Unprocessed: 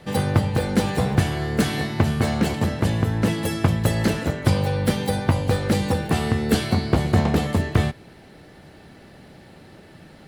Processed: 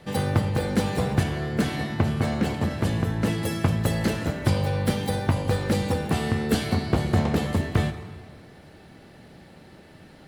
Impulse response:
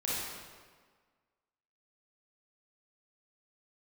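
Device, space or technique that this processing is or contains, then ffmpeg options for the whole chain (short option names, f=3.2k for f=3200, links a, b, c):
saturated reverb return: -filter_complex "[0:a]asplit=2[a][b];[1:a]atrim=start_sample=2205[c];[b][c]afir=irnorm=-1:irlink=0,asoftclip=type=tanh:threshold=-12dB,volume=-12.5dB[d];[a][d]amix=inputs=2:normalize=0,asettb=1/sr,asplit=3[e][f][g];[e]atrim=end=1.234[h];[f]atrim=start=1.23:end=2.71,asetpts=PTS-STARTPTS,afade=t=in:d=0.004:c=qsin,afade=t=out:st=1.476:d=0.004:c=qsin,highshelf=f=4.2k:g=-5.5[i];[g]atrim=start=2.706[j];[h][i]acrossfade=d=0.004:c1=hsin:c2=qsin[k];[k][j]acrossfade=d=0.004:c1=qsin:c2=hsin,volume=-4.5dB"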